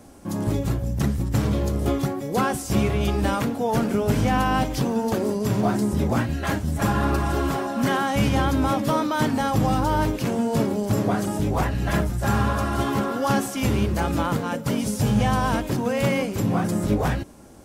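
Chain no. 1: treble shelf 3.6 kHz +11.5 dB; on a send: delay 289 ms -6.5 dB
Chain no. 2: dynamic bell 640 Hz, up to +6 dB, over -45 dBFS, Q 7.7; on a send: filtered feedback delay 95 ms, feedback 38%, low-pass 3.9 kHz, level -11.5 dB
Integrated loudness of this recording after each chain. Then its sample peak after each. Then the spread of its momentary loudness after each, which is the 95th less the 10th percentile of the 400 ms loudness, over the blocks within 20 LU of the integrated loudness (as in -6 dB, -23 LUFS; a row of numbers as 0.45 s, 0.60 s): -21.5 LUFS, -23.0 LUFS; -7.0 dBFS, -8.5 dBFS; 4 LU, 4 LU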